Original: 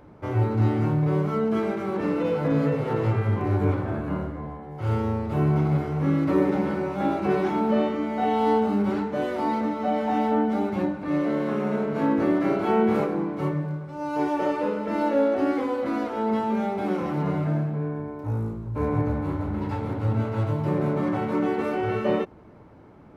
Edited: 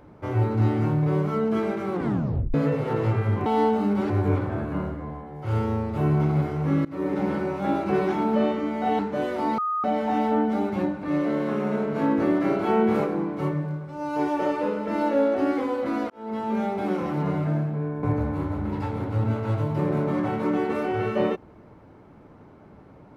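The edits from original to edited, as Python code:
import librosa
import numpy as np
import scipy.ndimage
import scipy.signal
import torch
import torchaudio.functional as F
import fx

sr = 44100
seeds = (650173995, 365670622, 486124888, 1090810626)

y = fx.edit(x, sr, fx.tape_stop(start_s=1.93, length_s=0.61),
    fx.fade_in_from(start_s=6.21, length_s=0.43, floor_db=-22.0),
    fx.move(start_s=8.35, length_s=0.64, to_s=3.46),
    fx.bleep(start_s=9.58, length_s=0.26, hz=1240.0, db=-23.0),
    fx.fade_in_span(start_s=16.1, length_s=0.48),
    fx.cut(start_s=18.03, length_s=0.89), tone=tone)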